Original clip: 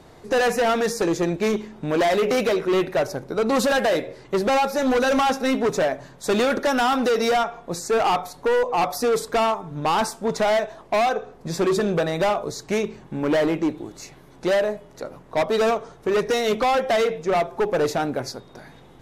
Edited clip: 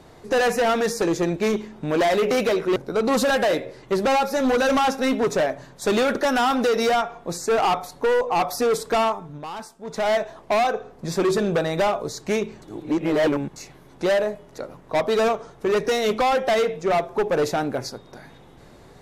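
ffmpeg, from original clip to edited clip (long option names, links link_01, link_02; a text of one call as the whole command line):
ffmpeg -i in.wav -filter_complex "[0:a]asplit=6[link_01][link_02][link_03][link_04][link_05][link_06];[link_01]atrim=end=2.762[link_07];[link_02]atrim=start=3.178:end=9.87,asetpts=PTS-STARTPTS,afade=type=out:start_time=6.392:duration=0.3:silence=0.223872[link_08];[link_03]atrim=start=9.87:end=10.26,asetpts=PTS-STARTPTS,volume=-13dB[link_09];[link_04]atrim=start=10.26:end=13.042,asetpts=PTS-STARTPTS,afade=type=in:duration=0.3:silence=0.223872[link_10];[link_05]atrim=start=13.038:end=13.982,asetpts=PTS-STARTPTS,areverse[link_11];[link_06]atrim=start=13.978[link_12];[link_08][link_09][link_10]concat=n=3:v=0:a=1[link_13];[link_07][link_13]acrossfade=duration=0.004:curve1=hsin:curve2=hsin[link_14];[link_14][link_11]acrossfade=duration=0.004:curve1=hsin:curve2=hsin[link_15];[link_15][link_12]acrossfade=duration=0.004:curve1=hsin:curve2=hsin" out.wav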